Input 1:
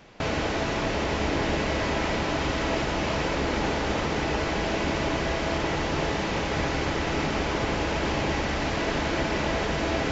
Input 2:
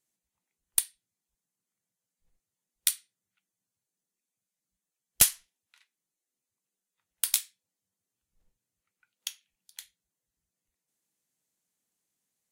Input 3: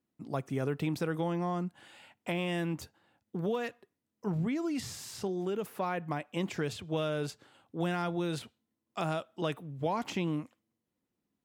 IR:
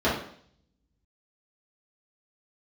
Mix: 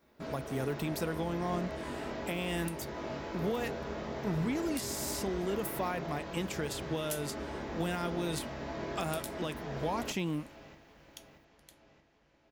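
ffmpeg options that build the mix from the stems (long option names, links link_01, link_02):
-filter_complex "[0:a]flanger=delay=19.5:depth=2.9:speed=0.39,volume=-18dB,asplit=3[link_01][link_02][link_03];[link_02]volume=-11.5dB[link_04];[link_03]volume=-7.5dB[link_05];[1:a]adelay=1900,volume=-15dB[link_06];[2:a]aemphasis=mode=production:type=50kf,volume=-1dB[link_07];[3:a]atrim=start_sample=2205[link_08];[link_04][link_08]afir=irnorm=-1:irlink=0[link_09];[link_05]aecho=0:1:628|1256|1884|2512|3140|3768|4396|5024:1|0.55|0.303|0.166|0.0915|0.0503|0.0277|0.0152[link_10];[link_01][link_06][link_07][link_09][link_10]amix=inputs=5:normalize=0,alimiter=limit=-23dB:level=0:latency=1:release=322"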